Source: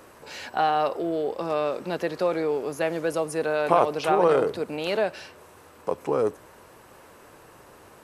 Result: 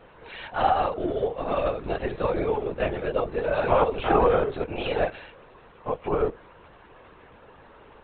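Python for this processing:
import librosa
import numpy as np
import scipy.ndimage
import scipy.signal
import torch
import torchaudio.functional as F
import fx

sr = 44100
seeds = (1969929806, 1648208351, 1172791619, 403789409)

y = fx.phase_scramble(x, sr, seeds[0], window_ms=50)
y = fx.lpc_vocoder(y, sr, seeds[1], excitation='whisper', order=16)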